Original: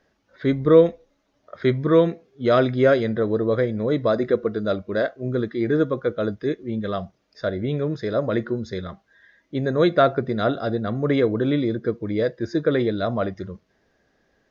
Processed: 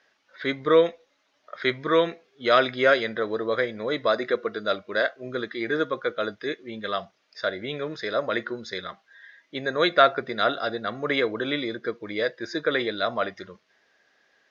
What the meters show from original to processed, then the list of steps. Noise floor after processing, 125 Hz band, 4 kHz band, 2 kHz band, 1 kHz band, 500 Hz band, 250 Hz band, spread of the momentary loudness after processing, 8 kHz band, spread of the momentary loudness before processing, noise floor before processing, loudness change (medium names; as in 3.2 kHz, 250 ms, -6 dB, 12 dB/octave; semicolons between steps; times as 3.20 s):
-69 dBFS, -15.5 dB, +6.5 dB, +5.0 dB, +2.0 dB, -4.0 dB, -9.0 dB, 12 LU, no reading, 10 LU, -68 dBFS, -3.5 dB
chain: band-pass filter 2.8 kHz, Q 0.63; trim +7 dB